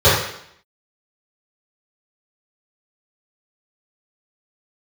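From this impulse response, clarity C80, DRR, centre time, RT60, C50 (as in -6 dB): 5.5 dB, -15.0 dB, 54 ms, 0.70 s, 2.0 dB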